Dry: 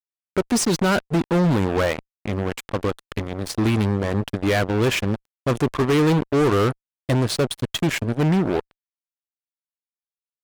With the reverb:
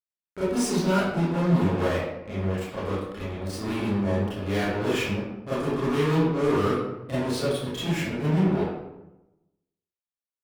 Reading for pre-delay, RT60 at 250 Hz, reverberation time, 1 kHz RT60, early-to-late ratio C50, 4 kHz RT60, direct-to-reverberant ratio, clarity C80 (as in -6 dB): 25 ms, 1.0 s, 0.95 s, 0.90 s, -3.0 dB, 0.55 s, -12.5 dB, 1.5 dB